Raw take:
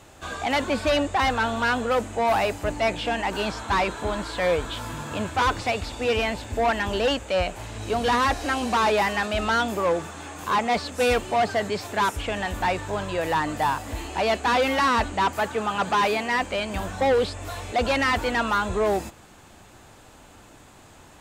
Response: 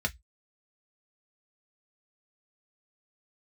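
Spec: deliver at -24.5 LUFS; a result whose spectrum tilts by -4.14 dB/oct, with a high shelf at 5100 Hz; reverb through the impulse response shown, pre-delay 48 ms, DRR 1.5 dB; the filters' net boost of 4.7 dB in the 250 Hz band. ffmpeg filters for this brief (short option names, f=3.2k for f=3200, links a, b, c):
-filter_complex "[0:a]equalizer=f=250:t=o:g=5.5,highshelf=f=5.1k:g=-3.5,asplit=2[a][b];[1:a]atrim=start_sample=2205,adelay=48[c];[b][c]afir=irnorm=-1:irlink=0,volume=-8dB[d];[a][d]amix=inputs=2:normalize=0,volume=-3.5dB"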